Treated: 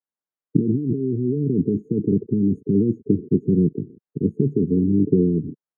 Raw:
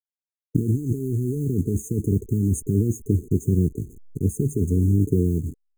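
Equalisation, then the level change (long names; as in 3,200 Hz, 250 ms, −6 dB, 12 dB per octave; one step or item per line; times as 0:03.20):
Savitzky-Golay smoothing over 41 samples
high-pass filter 150 Hz 24 dB per octave
high-frequency loss of the air 350 metres
+6.0 dB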